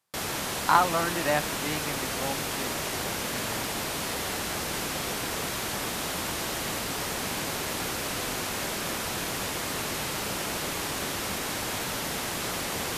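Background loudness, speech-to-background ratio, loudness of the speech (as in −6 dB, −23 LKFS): −30.0 LKFS, 1.5 dB, −28.5 LKFS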